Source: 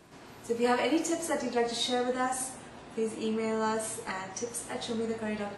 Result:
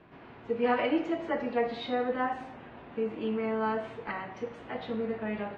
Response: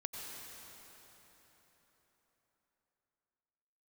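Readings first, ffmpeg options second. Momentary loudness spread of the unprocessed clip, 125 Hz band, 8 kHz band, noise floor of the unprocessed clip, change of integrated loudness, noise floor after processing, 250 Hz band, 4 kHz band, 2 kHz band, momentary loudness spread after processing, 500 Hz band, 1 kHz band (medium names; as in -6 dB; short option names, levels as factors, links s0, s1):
9 LU, 0.0 dB, under -30 dB, -50 dBFS, -0.5 dB, -50 dBFS, 0.0 dB, -8.0 dB, 0.0 dB, 12 LU, 0.0 dB, 0.0 dB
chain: -af "lowpass=f=2900:w=0.5412,lowpass=f=2900:w=1.3066"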